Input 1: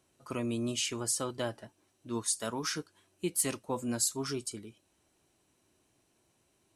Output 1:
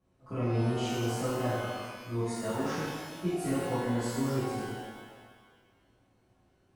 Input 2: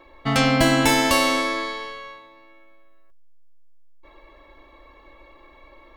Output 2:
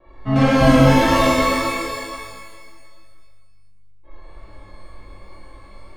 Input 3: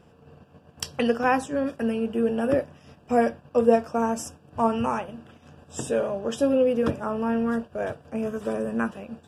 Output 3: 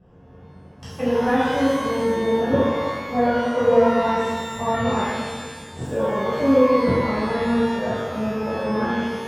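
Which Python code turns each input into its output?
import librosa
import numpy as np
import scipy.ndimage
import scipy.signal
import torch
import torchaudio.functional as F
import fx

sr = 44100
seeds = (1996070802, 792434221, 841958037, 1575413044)

y = fx.lowpass(x, sr, hz=1100.0, slope=6)
y = fx.low_shelf(y, sr, hz=90.0, db=10.0)
y = fx.wow_flutter(y, sr, seeds[0], rate_hz=2.1, depth_cents=39.0)
y = fx.rev_shimmer(y, sr, seeds[1], rt60_s=1.5, semitones=12, shimmer_db=-8, drr_db=-11.5)
y = y * 10.0 ** (-7.5 / 20.0)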